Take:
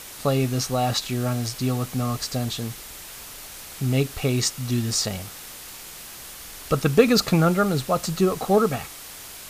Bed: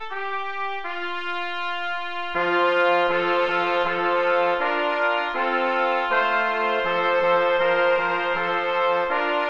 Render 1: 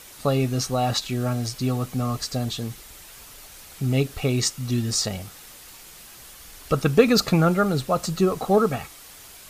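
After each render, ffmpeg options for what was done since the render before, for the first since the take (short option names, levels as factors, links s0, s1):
-af "afftdn=nr=6:nf=-40"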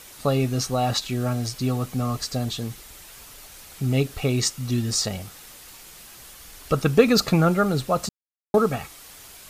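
-filter_complex "[0:a]asplit=3[s0][s1][s2];[s0]atrim=end=8.09,asetpts=PTS-STARTPTS,afade=t=out:st=8.086:d=0.004:c=hsin[s3];[s1]atrim=start=8.09:end=8.54,asetpts=PTS-STARTPTS,volume=0[s4];[s2]atrim=start=8.54,asetpts=PTS-STARTPTS,afade=t=in:d=0.004:c=hsin[s5];[s3][s4][s5]concat=n=3:v=0:a=1"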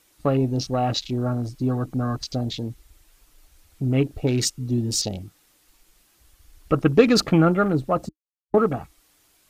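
-af "afwtdn=0.02,equalizer=f=310:w=5.7:g=10"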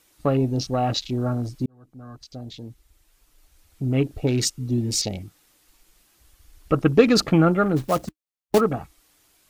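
-filter_complex "[0:a]asettb=1/sr,asplit=3[s0][s1][s2];[s0]atrim=end=4.814[s3];[s1]atrim=start=4.81:end=5.23,asetpts=PTS-STARTPTS,afade=t=in:d=0.004:c=qsin,afade=t=out:st=0.416:d=0.004:c=qsin,equalizer=f=2200:w=4.4:g=10.5[s4];[s2]atrim=start=5.226[s5];[s3][s4]acrossfade=d=0.004:c1=hsin:c2=qsin[s6];[s6][s5]acrossfade=d=0.004:c1=qsin:c2=hsin,asplit=3[s7][s8][s9];[s7]afade=t=out:st=7.76:d=0.02[s10];[s8]acrusher=bits=3:mode=log:mix=0:aa=0.000001,afade=t=in:st=7.76:d=0.02,afade=t=out:st=8.59:d=0.02[s11];[s9]afade=t=in:st=8.59:d=0.02[s12];[s10][s11][s12]amix=inputs=3:normalize=0,asplit=2[s13][s14];[s13]atrim=end=1.66,asetpts=PTS-STARTPTS,afade=t=out:st=1.656:d=0.004:c=hsin[s15];[s14]atrim=start=1.66,asetpts=PTS-STARTPTS,afade=t=in:d=2.54[s16];[s15][s16]concat=n=2:v=0:a=1"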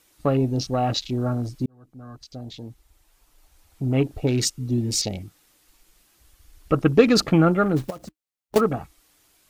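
-filter_complex "[0:a]asettb=1/sr,asplit=3[s0][s1][s2];[s0]atrim=end=2.444[s3];[s1]atrim=start=2.44:end=4.2,asetpts=PTS-STARTPTS,afade=t=in:d=0.004:c=qsin,afade=t=out:st=1.756:d=0.004:c=qsin,equalizer=f=840:t=o:w=0.91:g=5.5[s4];[s2]atrim=start=4.196[s5];[s3][s4]acrossfade=d=0.004:c1=hsin:c2=qsin[s6];[s6][s5]acrossfade=d=0.004:c1=qsin:c2=hsin,asettb=1/sr,asplit=3[s7][s8][s9];[s7]atrim=end=7.904[s10];[s8]atrim=start=7.9:end=8.56,asetpts=PTS-STARTPTS,afade=t=in:d=0.004:c=qsin,afade=t=out:st=0.656:d=0.004:c=qsin,acompressor=threshold=0.02:ratio=6:attack=3.2:release=140:knee=1:detection=peak[s11];[s9]atrim=start=8.556[s12];[s10][s11]acrossfade=d=0.004:c1=hsin:c2=qsin[s13];[s13][s12]acrossfade=d=0.004:c1=qsin:c2=hsin"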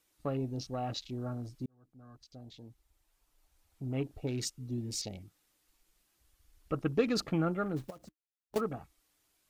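-af "volume=0.211"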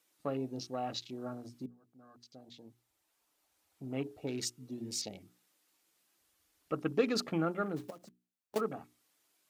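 -af "highpass=190,bandreject=f=60:t=h:w=6,bandreject=f=120:t=h:w=6,bandreject=f=180:t=h:w=6,bandreject=f=240:t=h:w=6,bandreject=f=300:t=h:w=6,bandreject=f=360:t=h:w=6,bandreject=f=420:t=h:w=6"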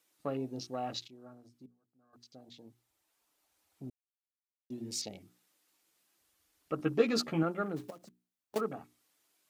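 -filter_complex "[0:a]asettb=1/sr,asplit=3[s0][s1][s2];[s0]atrim=end=6.784[s3];[s1]atrim=start=6.78:end=7.43,asetpts=PTS-STARTPTS,afade=t=in:d=0.004:c=qsin,afade=t=out:st=0.646:d=0.004:c=qsin,asplit=2[s4][s5];[s5]adelay=13,volume=0.708[s6];[s4][s6]amix=inputs=2:normalize=0,atrim=end_sample=28665[s7];[s2]atrim=start=7.426[s8];[s3][s7]acrossfade=d=0.004:c1=hsin:c2=qsin[s9];[s9][s8]acrossfade=d=0.004:c1=qsin:c2=hsin,asplit=5[s10][s11][s12][s13][s14];[s10]atrim=end=1.082[s15];[s11]atrim=start=1.078:end=2.132,asetpts=PTS-STARTPTS,volume=0.266[s16];[s12]atrim=start=2.128:end=3.9,asetpts=PTS-STARTPTS,afade=t=out:st=1.768:d=0.004:c=hsin[s17];[s13]atrim=start=3.9:end=4.7,asetpts=PTS-STARTPTS,volume=0[s18];[s14]atrim=start=4.7,asetpts=PTS-STARTPTS,afade=t=in:d=0.004:c=hsin[s19];[s15][s16]acrossfade=d=0.004:c1=hsin:c2=hsin[s20];[s17][s18][s19]concat=n=3:v=0:a=1[s21];[s20][s21]acrossfade=d=0.004:c1=hsin:c2=hsin"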